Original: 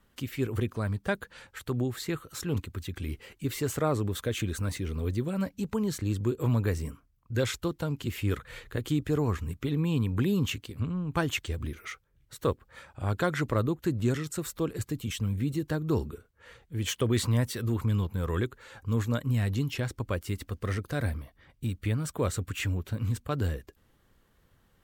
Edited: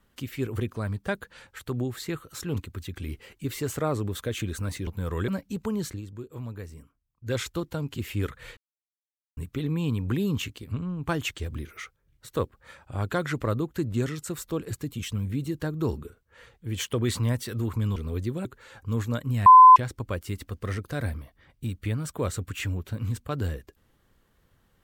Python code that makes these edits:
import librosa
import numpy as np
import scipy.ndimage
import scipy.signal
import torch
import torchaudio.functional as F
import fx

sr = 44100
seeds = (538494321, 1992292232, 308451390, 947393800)

y = fx.edit(x, sr, fx.swap(start_s=4.87, length_s=0.49, other_s=18.04, other_length_s=0.41),
    fx.fade_down_up(start_s=5.97, length_s=1.46, db=-11.0, fade_s=0.13),
    fx.silence(start_s=8.65, length_s=0.8),
    fx.bleep(start_s=19.46, length_s=0.3, hz=1020.0, db=-7.0), tone=tone)